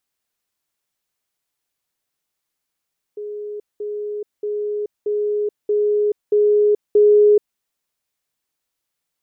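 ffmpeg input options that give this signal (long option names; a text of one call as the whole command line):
ffmpeg -f lavfi -i "aevalsrc='pow(10,(-26.5+3*floor(t/0.63))/20)*sin(2*PI*417*t)*clip(min(mod(t,0.63),0.43-mod(t,0.63))/0.005,0,1)':duration=4.41:sample_rate=44100" out.wav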